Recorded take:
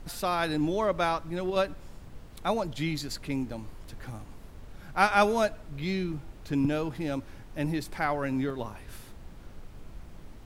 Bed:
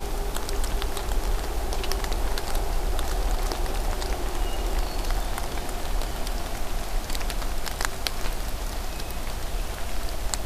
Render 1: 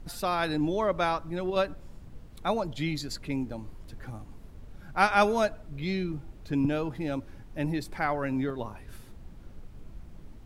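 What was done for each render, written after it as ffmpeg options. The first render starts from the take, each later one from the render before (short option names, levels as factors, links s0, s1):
-af "afftdn=nr=6:nf=-48"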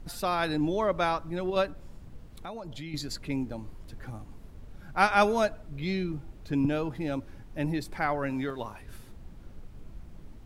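-filter_complex "[0:a]asettb=1/sr,asplit=3[s0][s1][s2];[s0]atrim=end=1.664[s3];[s1]atrim=start=1.66:end=2.94,asetpts=PTS-STARTPTS,afade=t=in:d=0.004:c=qsin,afade=t=out:st=1.276:d=0.004:c=qsin,acompressor=threshold=0.0158:ratio=6:attack=3.2:release=140:knee=1:detection=peak[s4];[s2]atrim=start=2.936[s5];[s3][s4]acrossfade=d=0.004:c1=hsin:c2=qsin[s6];[s6][s5]acrossfade=d=0.004:c1=qsin:c2=hsin,asettb=1/sr,asplit=3[s7][s8][s9];[s7]atrim=end=8.304[s10];[s8]atrim=start=8.3:end=8.82,asetpts=PTS-STARTPTS,afade=t=in:d=0.004:c=qsin,afade=t=out:st=0.516:d=0.004:c=qsin,tiltshelf=f=660:g=-4[s11];[s9]atrim=start=8.816[s12];[s10][s11]acrossfade=d=0.004:c1=hsin:c2=qsin[s13];[s13][s12]acrossfade=d=0.004:c1=qsin:c2=hsin"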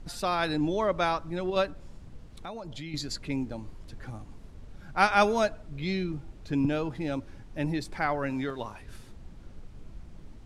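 -af "lowpass=7900,highshelf=f=4700:g=5"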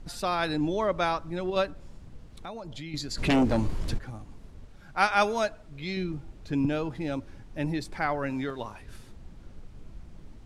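-filter_complex "[0:a]asplit=3[s0][s1][s2];[s0]afade=t=out:st=3.17:d=0.02[s3];[s1]aeval=exprs='0.126*sin(PI/2*3.55*val(0)/0.126)':c=same,afade=t=in:st=3.17:d=0.02,afade=t=out:st=3.97:d=0.02[s4];[s2]afade=t=in:st=3.97:d=0.02[s5];[s3][s4][s5]amix=inputs=3:normalize=0,asettb=1/sr,asplit=3[s6][s7][s8];[s6]atrim=end=4.664[s9];[s7]atrim=start=4.66:end=5.97,asetpts=PTS-STARTPTS,afade=t=in:d=0.004:c=qsin,afade=t=out:st=1.306:d=0.004:c=qsin,lowshelf=f=440:g=-5.5[s10];[s8]atrim=start=5.966[s11];[s9][s10]acrossfade=d=0.004:c1=hsin:c2=qsin[s12];[s12][s11]acrossfade=d=0.004:c1=qsin:c2=hsin"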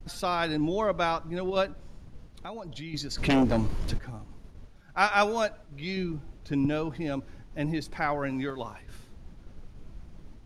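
-af "bandreject=f=7700:w=8.7,agate=range=0.0224:threshold=0.00708:ratio=3:detection=peak"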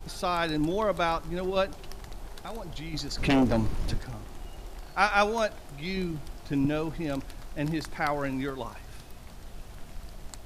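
-filter_complex "[1:a]volume=0.15[s0];[0:a][s0]amix=inputs=2:normalize=0"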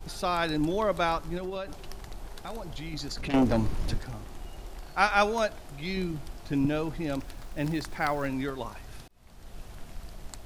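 -filter_complex "[0:a]asettb=1/sr,asplit=3[s0][s1][s2];[s0]atrim=end=1.374[s3];[s1]atrim=start=1.37:end=3.34,asetpts=PTS-STARTPTS,afade=t=in:d=0.004:c=qsin,afade=t=out:st=1.966:d=0.004:c=qsin,acompressor=threshold=0.0316:ratio=12:attack=3.2:release=140:knee=1:detection=peak[s4];[s2]atrim=start=3.336[s5];[s3][s4]acrossfade=d=0.004:c1=hsin:c2=qsin[s6];[s6][s5]acrossfade=d=0.004:c1=qsin:c2=hsin,asettb=1/sr,asplit=3[s7][s8][s9];[s7]atrim=end=7.204[s10];[s8]atrim=start=7.2:end=8.27,asetpts=PTS-STARTPTS,afade=t=in:d=0.004:c=qsin,afade=t=out:st=1.066:d=0.004:c=qsin,acrusher=bits=7:mode=log:mix=0:aa=0.000001[s11];[s9]atrim=start=8.266[s12];[s10][s11]acrossfade=d=0.004:c1=hsin:c2=qsin[s13];[s13][s12]acrossfade=d=0.004:c1=qsin:c2=hsin,asplit=2[s14][s15];[s14]atrim=end=9.08,asetpts=PTS-STARTPTS,afade=t=out:st=9.076:d=0.004:c=hsin[s16];[s15]atrim=start=9.08,asetpts=PTS-STARTPTS,afade=t=in:d=0.51[s17];[s16][s17]concat=n=2:v=0:a=1"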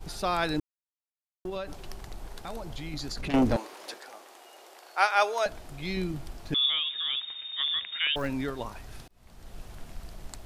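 -filter_complex "[0:a]asettb=1/sr,asplit=3[s0][s1][s2];[s0]atrim=end=3.564[s3];[s1]atrim=start=3.56:end=5.46,asetpts=PTS-STARTPTS,afade=t=in:d=0.004:c=qsin,afade=t=out:st=1.896:d=0.004:c=qsin,highpass=f=430:w=0.5412,highpass=f=430:w=1.3066[s4];[s2]atrim=start=5.456[s5];[s3][s4]acrossfade=d=0.004:c1=hsin:c2=qsin[s6];[s6][s5]acrossfade=d=0.004:c1=qsin:c2=hsin,asettb=1/sr,asplit=3[s7][s8][s9];[s7]atrim=end=6.544[s10];[s8]atrim=start=6.54:end=8.16,asetpts=PTS-STARTPTS,afade=t=in:d=0.004:c=qsin,afade=t=out:st=1.616:d=0.004:c=qsin,lowpass=f=3100:t=q:w=0.5098,lowpass=f=3100:t=q:w=0.6013,lowpass=f=3100:t=q:w=0.9,lowpass=f=3100:t=q:w=2.563,afreqshift=-3700[s11];[s9]atrim=start=8.156[s12];[s10][s11]acrossfade=d=0.004:c1=hsin:c2=qsin[s13];[s13][s12]acrossfade=d=0.004:c1=qsin:c2=hsin,asplit=3[s14][s15][s16];[s14]atrim=end=0.6,asetpts=PTS-STARTPTS,afade=t=out:st=0.596:d=0.004:c=hsin[s17];[s15]atrim=start=0.6:end=1.45,asetpts=PTS-STARTPTS,volume=0[s18];[s16]atrim=start=1.45,asetpts=PTS-STARTPTS,afade=t=in:d=0.004:c=hsin[s19];[s17][s18][s19]concat=n=3:v=0:a=1"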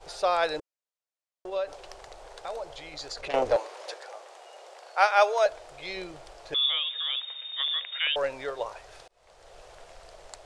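-af "lowpass=f=8800:w=0.5412,lowpass=f=8800:w=1.3066,lowshelf=f=350:t=q:w=3:g=-13.5"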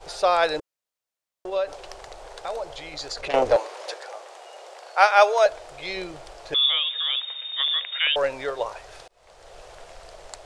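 -af "volume=1.78"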